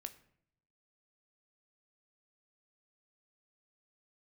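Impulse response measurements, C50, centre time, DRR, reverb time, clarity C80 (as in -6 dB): 15.5 dB, 6 ms, 8.0 dB, 0.65 s, 18.5 dB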